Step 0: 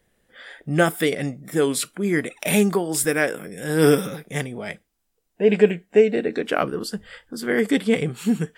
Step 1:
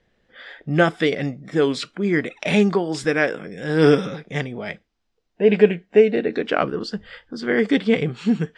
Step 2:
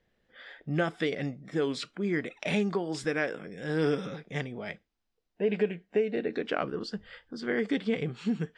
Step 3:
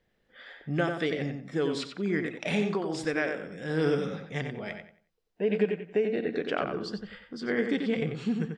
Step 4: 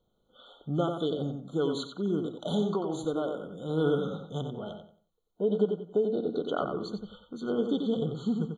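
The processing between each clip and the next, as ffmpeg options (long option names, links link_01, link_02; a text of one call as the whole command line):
ffmpeg -i in.wav -af "lowpass=frequency=5400:width=0.5412,lowpass=frequency=5400:width=1.3066,volume=1.5dB" out.wav
ffmpeg -i in.wav -af "acompressor=threshold=-17dB:ratio=2.5,volume=-8dB" out.wav
ffmpeg -i in.wav -filter_complex "[0:a]asplit=2[link_01][link_02];[link_02]adelay=91,lowpass=frequency=3600:poles=1,volume=-5.5dB,asplit=2[link_03][link_04];[link_04]adelay=91,lowpass=frequency=3600:poles=1,volume=0.29,asplit=2[link_05][link_06];[link_06]adelay=91,lowpass=frequency=3600:poles=1,volume=0.29,asplit=2[link_07][link_08];[link_08]adelay=91,lowpass=frequency=3600:poles=1,volume=0.29[link_09];[link_01][link_03][link_05][link_07][link_09]amix=inputs=5:normalize=0" out.wav
ffmpeg -i in.wav -af "afftfilt=real='re*eq(mod(floor(b*sr/1024/1500),2),0)':imag='im*eq(mod(floor(b*sr/1024/1500),2),0)':win_size=1024:overlap=0.75" out.wav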